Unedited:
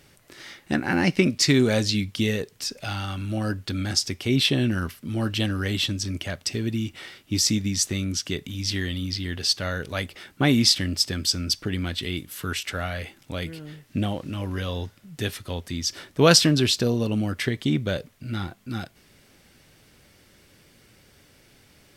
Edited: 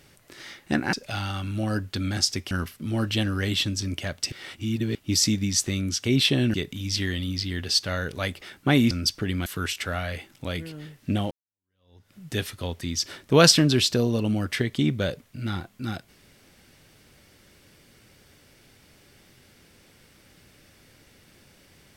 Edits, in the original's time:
0:00.93–0:02.67: remove
0:04.25–0:04.74: move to 0:08.28
0:06.55–0:07.18: reverse
0:10.65–0:11.35: remove
0:11.90–0:12.33: remove
0:14.18–0:15.01: fade in exponential

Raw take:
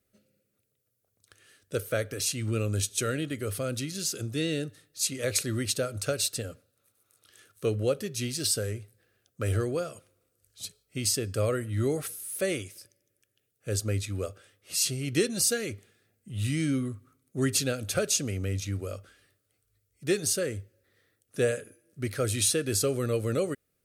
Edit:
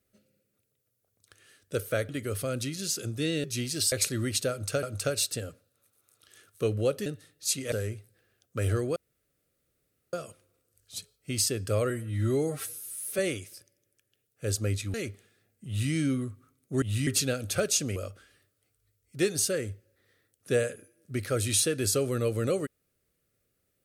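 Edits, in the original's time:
0:02.09–0:03.25: remove
0:04.60–0:05.26: swap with 0:08.08–0:08.56
0:05.85–0:06.17: repeat, 2 plays
0:09.80: splice in room tone 1.17 s
0:11.57–0:12.43: time-stretch 1.5×
0:14.18–0:15.58: remove
0:16.31–0:16.56: duplicate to 0:17.46
0:18.35–0:18.84: remove

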